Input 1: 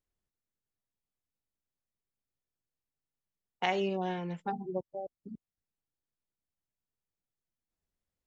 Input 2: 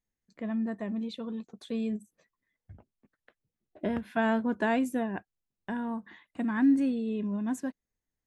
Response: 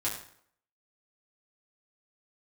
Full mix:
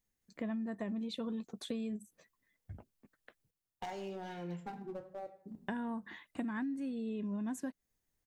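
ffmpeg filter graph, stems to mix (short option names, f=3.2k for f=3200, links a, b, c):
-filter_complex "[0:a]acrossover=split=1800|3900[a][b][c];[a]acompressor=threshold=-37dB:ratio=4[d];[b]acompressor=threshold=-60dB:ratio=4[e];[c]acompressor=threshold=-53dB:ratio=4[f];[d][e][f]amix=inputs=3:normalize=0,aeval=exprs='clip(val(0),-1,0.0119)':c=same,adelay=200,volume=-5.5dB,asplit=2[g][h];[h]volume=-7dB[i];[1:a]volume=2dB,asplit=3[j][k][l];[j]atrim=end=3.51,asetpts=PTS-STARTPTS,afade=t=out:st=3.506:d=0.004:c=hsin[m];[k]atrim=start=3.51:end=5.47,asetpts=PTS-STARTPTS,volume=0[n];[l]atrim=start=5.47,asetpts=PTS-STARTPTS,afade=t=in:d=0.004:c=hsin[o];[m][n][o]concat=n=3:v=0:a=1[p];[2:a]atrim=start_sample=2205[q];[i][q]afir=irnorm=-1:irlink=0[r];[g][p][r]amix=inputs=3:normalize=0,highshelf=f=6.7k:g=6,acompressor=threshold=-35dB:ratio=16"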